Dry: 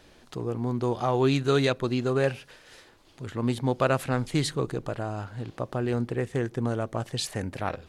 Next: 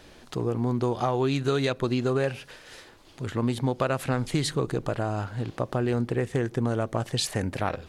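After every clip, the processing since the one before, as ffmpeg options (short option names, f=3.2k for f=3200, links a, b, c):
-af "acompressor=threshold=-26dB:ratio=6,volume=4.5dB"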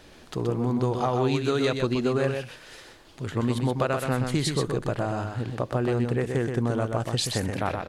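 -af "aecho=1:1:126:0.531"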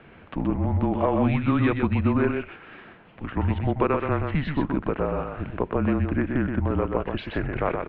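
-af "highpass=f=180:t=q:w=0.5412,highpass=f=180:t=q:w=1.307,lowpass=f=2.8k:t=q:w=0.5176,lowpass=f=2.8k:t=q:w=0.7071,lowpass=f=2.8k:t=q:w=1.932,afreqshift=-150,volume=3.5dB"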